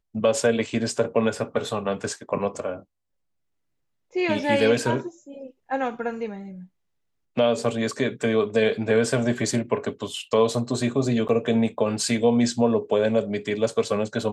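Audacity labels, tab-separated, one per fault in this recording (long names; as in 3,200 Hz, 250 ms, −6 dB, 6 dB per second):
11.280000	11.290000	drop-out 8.5 ms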